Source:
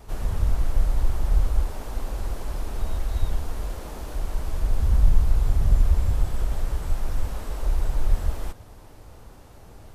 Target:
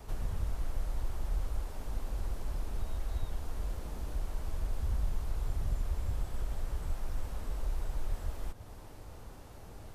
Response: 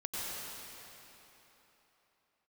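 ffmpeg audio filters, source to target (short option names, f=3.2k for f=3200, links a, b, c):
-filter_complex "[0:a]acrossover=split=230|1700[a][b][c];[a]acompressor=threshold=-28dB:ratio=4[d];[b]acompressor=threshold=-48dB:ratio=4[e];[c]acompressor=threshold=-54dB:ratio=4[f];[d][e][f]amix=inputs=3:normalize=0,volume=-2.5dB"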